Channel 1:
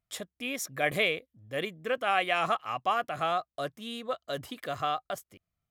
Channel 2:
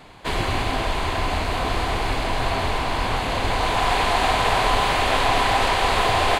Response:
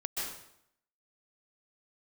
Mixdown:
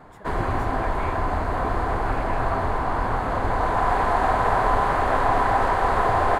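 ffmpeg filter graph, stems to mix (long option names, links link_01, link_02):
-filter_complex "[0:a]volume=-9.5dB[link_01];[1:a]equalizer=frequency=2400:width=1.6:gain=-8,volume=-0.5dB[link_02];[link_01][link_02]amix=inputs=2:normalize=0,highshelf=frequency=2400:width_type=q:width=1.5:gain=-12"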